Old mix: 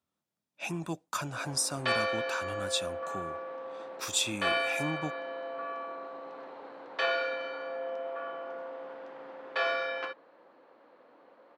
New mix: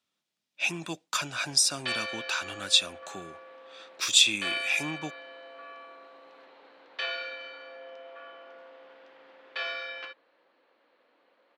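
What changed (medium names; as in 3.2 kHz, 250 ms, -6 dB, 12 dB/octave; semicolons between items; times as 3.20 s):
background -9.5 dB; master: add frequency weighting D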